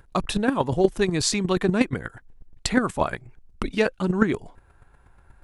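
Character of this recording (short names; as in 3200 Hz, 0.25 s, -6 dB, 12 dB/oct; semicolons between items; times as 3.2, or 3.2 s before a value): chopped level 8.3 Hz, depth 60%, duty 10%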